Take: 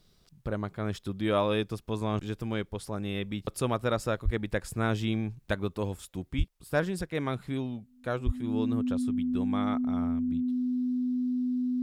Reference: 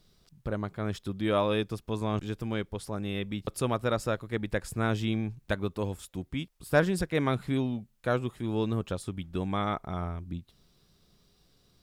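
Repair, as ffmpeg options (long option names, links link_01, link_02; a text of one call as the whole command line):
ffmpeg -i in.wav -filter_complex "[0:a]bandreject=frequency=250:width=30,asplit=3[link_01][link_02][link_03];[link_01]afade=type=out:start_time=4.24:duration=0.02[link_04];[link_02]highpass=frequency=140:width=0.5412,highpass=frequency=140:width=1.3066,afade=type=in:start_time=4.24:duration=0.02,afade=type=out:start_time=4.36:duration=0.02[link_05];[link_03]afade=type=in:start_time=4.36:duration=0.02[link_06];[link_04][link_05][link_06]amix=inputs=3:normalize=0,asplit=3[link_07][link_08][link_09];[link_07]afade=type=out:start_time=6.37:duration=0.02[link_10];[link_08]highpass=frequency=140:width=0.5412,highpass=frequency=140:width=1.3066,afade=type=in:start_time=6.37:duration=0.02,afade=type=out:start_time=6.49:duration=0.02[link_11];[link_09]afade=type=in:start_time=6.49:duration=0.02[link_12];[link_10][link_11][link_12]amix=inputs=3:normalize=0,asplit=3[link_13][link_14][link_15];[link_13]afade=type=out:start_time=8.25:duration=0.02[link_16];[link_14]highpass=frequency=140:width=0.5412,highpass=frequency=140:width=1.3066,afade=type=in:start_time=8.25:duration=0.02,afade=type=out:start_time=8.37:duration=0.02[link_17];[link_15]afade=type=in:start_time=8.37:duration=0.02[link_18];[link_16][link_17][link_18]amix=inputs=3:normalize=0,asetnsamples=nb_out_samples=441:pad=0,asendcmd='6.4 volume volume 4dB',volume=0dB" out.wav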